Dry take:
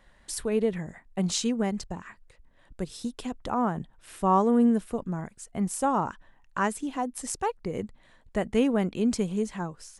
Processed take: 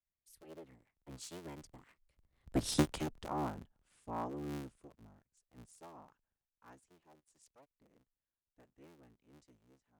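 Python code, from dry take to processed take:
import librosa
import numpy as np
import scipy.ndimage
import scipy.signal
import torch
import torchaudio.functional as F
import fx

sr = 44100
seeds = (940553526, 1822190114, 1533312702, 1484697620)

y = fx.cycle_switch(x, sr, every=3, mode='inverted')
y = fx.doppler_pass(y, sr, speed_mps=31, closest_m=2.9, pass_at_s=2.72)
y = fx.band_widen(y, sr, depth_pct=40)
y = y * librosa.db_to_amplitude(2.0)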